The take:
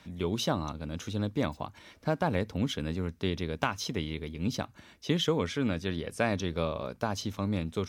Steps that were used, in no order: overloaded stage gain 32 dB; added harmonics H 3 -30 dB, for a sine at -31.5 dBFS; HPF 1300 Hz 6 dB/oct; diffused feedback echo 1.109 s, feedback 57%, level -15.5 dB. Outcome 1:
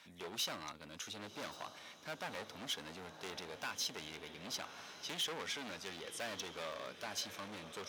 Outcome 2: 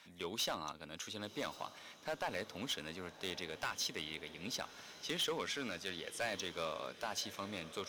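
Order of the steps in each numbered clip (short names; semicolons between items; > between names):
diffused feedback echo > overloaded stage > HPF > added harmonics; HPF > added harmonics > diffused feedback echo > overloaded stage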